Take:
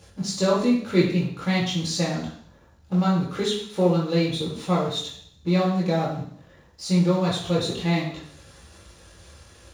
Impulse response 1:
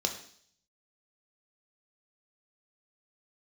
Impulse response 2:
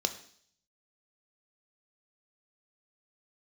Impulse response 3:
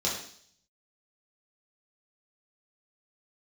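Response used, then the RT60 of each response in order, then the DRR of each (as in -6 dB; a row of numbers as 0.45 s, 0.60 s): 3; 0.60 s, 0.60 s, 0.60 s; 3.0 dB, 7.5 dB, -6.0 dB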